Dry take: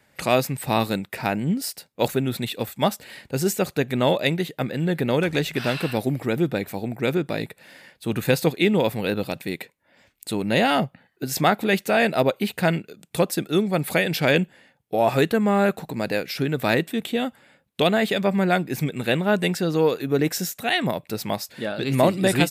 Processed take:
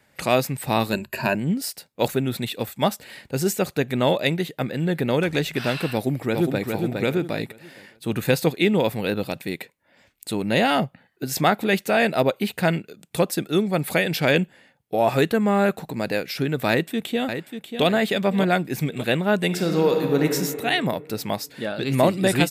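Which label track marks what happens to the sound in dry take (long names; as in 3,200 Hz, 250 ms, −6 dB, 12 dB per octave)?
0.920000	1.350000	EQ curve with evenly spaced ripples crests per octave 1.4, crest to trough 15 dB
5.930000	6.640000	delay throw 410 ms, feedback 30%, level −4 dB
16.690000	17.850000	delay throw 590 ms, feedback 40%, level −8.5 dB
19.460000	20.250000	thrown reverb, RT60 2.2 s, DRR 3 dB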